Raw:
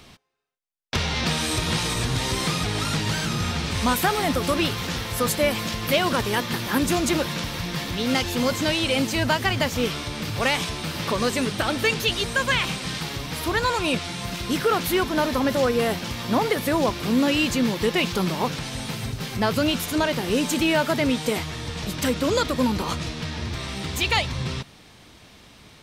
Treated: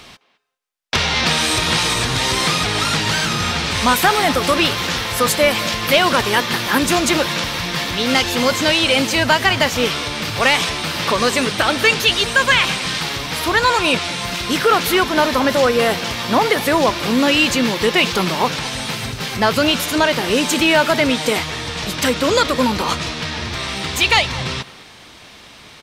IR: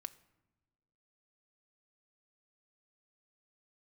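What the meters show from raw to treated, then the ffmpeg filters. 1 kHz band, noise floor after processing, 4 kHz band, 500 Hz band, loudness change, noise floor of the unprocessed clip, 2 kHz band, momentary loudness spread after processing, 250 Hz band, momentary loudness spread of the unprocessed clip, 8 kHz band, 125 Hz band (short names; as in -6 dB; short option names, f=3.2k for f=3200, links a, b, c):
+8.5 dB, -42 dBFS, +9.0 dB, +6.5 dB, +7.5 dB, -50 dBFS, +9.5 dB, 8 LU, +3.5 dB, 8 LU, +7.5 dB, +1.5 dB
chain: -filter_complex "[0:a]asplit=2[a][b];[b]adelay=210,highpass=300,lowpass=3.4k,asoftclip=type=hard:threshold=-17dB,volume=-17dB[c];[a][c]amix=inputs=2:normalize=0,asplit=2[d][e];[e]highpass=f=720:p=1,volume=7dB,asoftclip=type=tanh:threshold=-7.5dB[f];[d][f]amix=inputs=2:normalize=0,lowpass=f=6.8k:p=1,volume=-6dB,volume=6.5dB"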